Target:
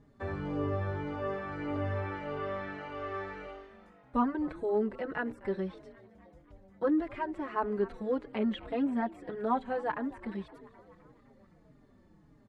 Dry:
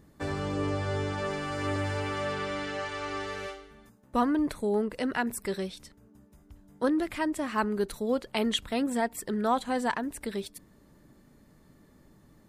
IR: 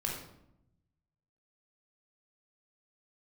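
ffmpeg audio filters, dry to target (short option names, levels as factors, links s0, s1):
-filter_complex "[0:a]lowpass=7600,acrossover=split=2700[s0][s1];[s1]acompressor=threshold=0.00112:ratio=4:attack=1:release=60[s2];[s0][s2]amix=inputs=2:normalize=0,highshelf=f=3600:g=-11,asplit=7[s3][s4][s5][s6][s7][s8][s9];[s4]adelay=258,afreqshift=49,volume=0.1[s10];[s5]adelay=516,afreqshift=98,volume=0.0638[s11];[s6]adelay=774,afreqshift=147,volume=0.0407[s12];[s7]adelay=1032,afreqshift=196,volume=0.0263[s13];[s8]adelay=1290,afreqshift=245,volume=0.0168[s14];[s9]adelay=1548,afreqshift=294,volume=0.0107[s15];[s3][s10][s11][s12][s13][s14][s15]amix=inputs=7:normalize=0,asplit=2[s16][s17];[s17]adelay=4.4,afreqshift=-1.7[s18];[s16][s18]amix=inputs=2:normalize=1"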